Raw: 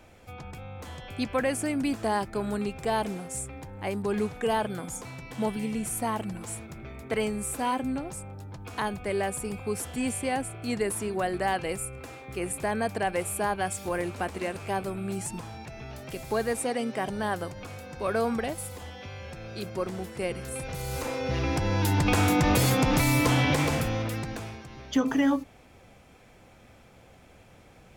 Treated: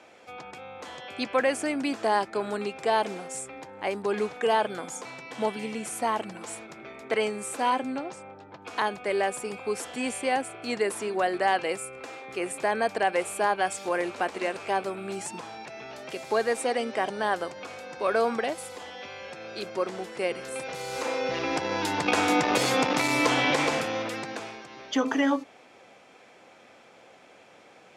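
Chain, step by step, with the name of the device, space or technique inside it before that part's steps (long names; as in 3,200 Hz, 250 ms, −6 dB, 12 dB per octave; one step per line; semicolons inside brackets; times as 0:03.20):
public-address speaker with an overloaded transformer (saturating transformer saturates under 190 Hz; band-pass filter 350–6,900 Hz)
0:07.70–0:08.62: low-pass that shuts in the quiet parts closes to 2,800 Hz, open at −28 dBFS
level +4 dB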